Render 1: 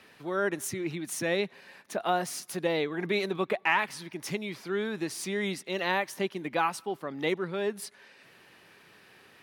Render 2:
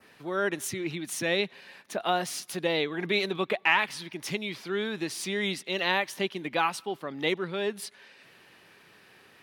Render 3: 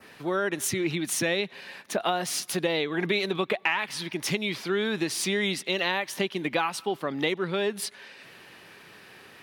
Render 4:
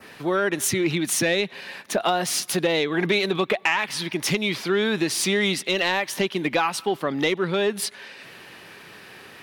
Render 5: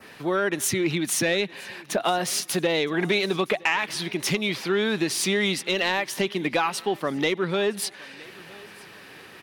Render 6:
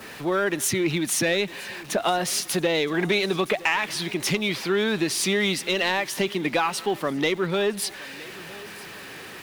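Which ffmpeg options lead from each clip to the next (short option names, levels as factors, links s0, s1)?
-af "adynamicequalizer=threshold=0.00398:dfrequency=3300:dqfactor=1.2:tfrequency=3300:tqfactor=1.2:attack=5:release=100:ratio=0.375:range=3.5:mode=boostabove:tftype=bell"
-af "acompressor=threshold=0.0355:ratio=6,volume=2.11"
-af "asoftclip=type=tanh:threshold=0.168,volume=1.88"
-af "aecho=1:1:965|1930|2895:0.0668|0.0281|0.0118,volume=0.841"
-af "aeval=exprs='val(0)+0.5*0.0106*sgn(val(0))':c=same"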